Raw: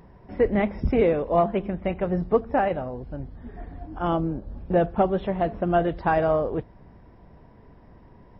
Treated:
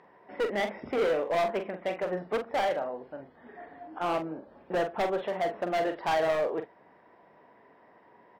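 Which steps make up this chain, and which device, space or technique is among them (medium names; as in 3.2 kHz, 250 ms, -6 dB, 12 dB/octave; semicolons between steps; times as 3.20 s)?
megaphone (band-pass 470–3300 Hz; peaking EQ 1.9 kHz +4.5 dB 0.24 oct; hard clipper -24.5 dBFS, distortion -8 dB; doubling 44 ms -8 dB)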